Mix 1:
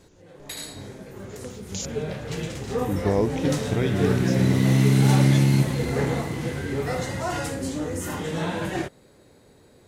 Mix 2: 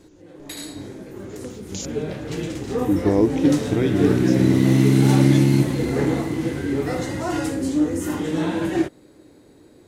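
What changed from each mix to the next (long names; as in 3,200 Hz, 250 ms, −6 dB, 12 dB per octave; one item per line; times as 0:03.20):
master: add parametric band 310 Hz +13 dB 0.44 octaves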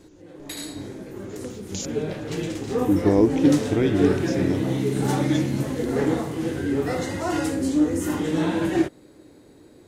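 second sound −10.5 dB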